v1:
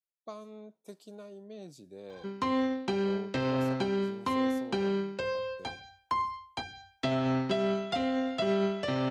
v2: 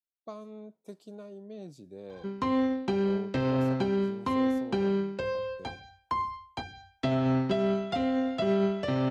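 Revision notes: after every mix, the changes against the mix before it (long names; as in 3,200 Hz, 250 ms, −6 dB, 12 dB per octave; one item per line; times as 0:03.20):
master: add spectral tilt −1.5 dB per octave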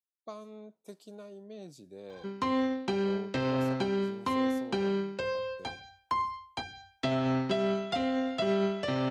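master: add spectral tilt +1.5 dB per octave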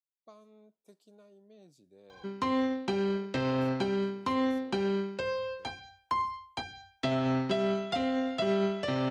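speech −11.0 dB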